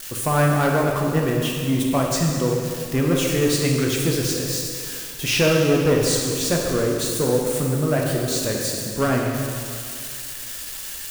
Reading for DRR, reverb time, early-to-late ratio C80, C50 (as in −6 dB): −1.0 dB, 2.2 s, 2.0 dB, 1.0 dB